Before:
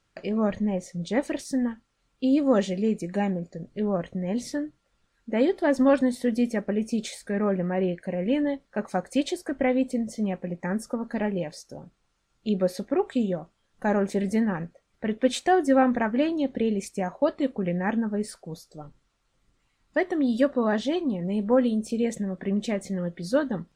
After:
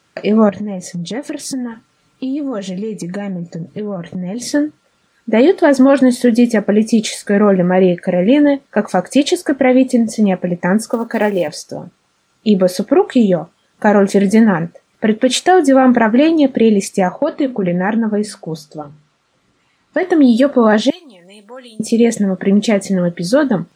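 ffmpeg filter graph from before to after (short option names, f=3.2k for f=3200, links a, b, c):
-filter_complex "[0:a]asettb=1/sr,asplit=3[a][b][c];[a]atrim=end=0.494[d];[b]atrim=start=0.49:end=4.42,asetpts=PTS-STARTPTS,afade=t=in:d=0.004:c=qsin,afade=t=out:st=3.926:d=0.004:c=qsin,bass=f=250:g=5,treble=f=4k:g=0,aecho=1:1:6.7:0.44,atrim=end_sample=173313,acompressor=threshold=-35dB:ratio=5:attack=3.2:release=140:knee=1:detection=peak[e];[c]atrim=start=4.416[f];[d][e]acrossfade=d=0.004:c1=hsin:c2=qsin[g];[g][f]acrossfade=d=0.004:c1=qsin:c2=hsin,asettb=1/sr,asplit=3[h][i][j];[h]atrim=end=10.904[k];[i]atrim=start=10.9:end=11.48,asetpts=PTS-STARTPTS,afade=t=in:d=0.004:c=qsin,afade=t=out:st=0.576:d=0.004:c=qsin,highpass=270,acrusher=bits=8:mode=log:mix=0:aa=0.000001[l];[j]atrim=start=11.476[m];[k][l]acrossfade=d=0.004:c1=hsin:c2=qsin[n];[n][m]acrossfade=d=0.004:c1=qsin:c2=hsin,asettb=1/sr,asplit=3[o][p][q];[o]atrim=end=17.094[r];[p]atrim=start=17.09:end=20.03,asetpts=PTS-STARTPTS,afade=t=in:d=0.004:c=qsin,afade=t=out:st=2.936:d=0.004:c=qsin,highshelf=f=8.4k:g=-10.5,bandreject=f=50:t=h:w=6,bandreject=f=100:t=h:w=6,bandreject=f=150:t=h:w=6,bandreject=f=200:t=h:w=6,bandreject=f=250:t=h:w=6,acompressor=threshold=-26dB:ratio=4:attack=3.2:release=140:knee=1:detection=peak[s];[q]atrim=start=20.026[t];[r][s]acrossfade=d=0.004:c1=hsin:c2=qsin[u];[u][t]acrossfade=d=0.004:c1=qsin:c2=hsin,asettb=1/sr,asplit=3[v][w][x];[v]atrim=end=20.904[y];[w]atrim=start=20.9:end=21.8,asetpts=PTS-STARTPTS,afade=t=in:d=0.004:c=qsin,afade=t=out:st=0.896:d=0.004:c=qsin,aderivative,acompressor=threshold=-53dB:ratio=1.5:attack=3.2:release=140:knee=1:detection=peak[z];[x]atrim=start=21.796[aa];[y][z]acrossfade=d=0.004:c1=hsin:c2=qsin[ab];[ab][aa]acrossfade=d=0.004:c1=qsin:c2=hsin,highpass=140,alimiter=level_in=16dB:limit=-1dB:release=50:level=0:latency=1,volume=-1dB"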